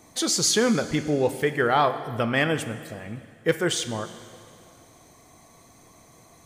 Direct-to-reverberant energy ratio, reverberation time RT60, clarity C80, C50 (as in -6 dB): 11.0 dB, 2.4 s, 13.0 dB, 12.0 dB